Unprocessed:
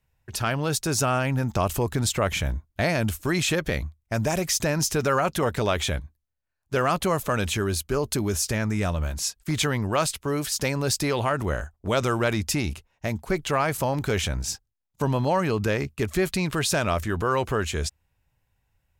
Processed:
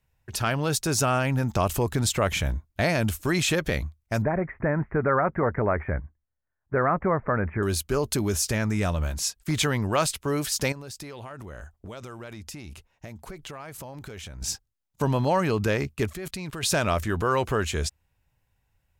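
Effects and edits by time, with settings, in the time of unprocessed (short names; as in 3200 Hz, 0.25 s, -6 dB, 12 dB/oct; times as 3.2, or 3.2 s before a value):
4.22–7.63 steep low-pass 2100 Hz 72 dB/oct
10.72–14.42 compressor, threshold -37 dBFS
16.13–16.63 level quantiser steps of 17 dB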